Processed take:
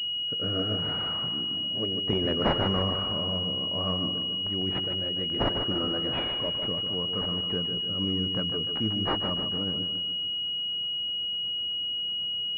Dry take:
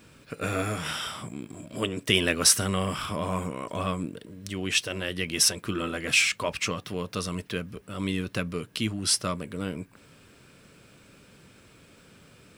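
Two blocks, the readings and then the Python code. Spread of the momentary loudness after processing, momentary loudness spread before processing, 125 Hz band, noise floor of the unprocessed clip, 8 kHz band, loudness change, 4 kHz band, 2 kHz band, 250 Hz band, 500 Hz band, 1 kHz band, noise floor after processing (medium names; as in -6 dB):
2 LU, 16 LU, 0.0 dB, -56 dBFS, under -35 dB, 0.0 dB, +8.0 dB, -11.5 dB, 0.0 dB, 0.0 dB, -1.0 dB, -31 dBFS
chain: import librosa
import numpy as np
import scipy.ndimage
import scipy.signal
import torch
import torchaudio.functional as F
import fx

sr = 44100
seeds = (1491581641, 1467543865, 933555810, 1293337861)

p1 = fx.rotary_switch(x, sr, hz=0.65, then_hz=8.0, switch_at_s=8.21)
p2 = p1 + fx.echo_feedback(p1, sr, ms=149, feedback_pct=50, wet_db=-7.5, dry=0)
y = fx.pwm(p2, sr, carrier_hz=2900.0)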